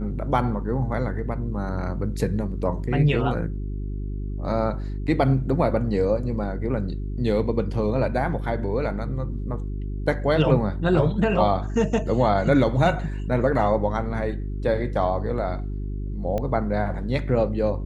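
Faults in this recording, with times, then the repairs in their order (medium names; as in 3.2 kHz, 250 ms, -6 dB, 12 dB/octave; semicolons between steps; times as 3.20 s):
hum 50 Hz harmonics 8 -29 dBFS
16.38 s: pop -16 dBFS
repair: de-click; de-hum 50 Hz, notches 8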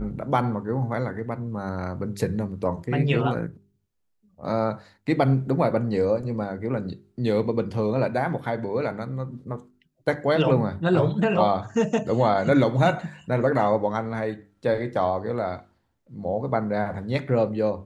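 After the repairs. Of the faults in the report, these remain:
nothing left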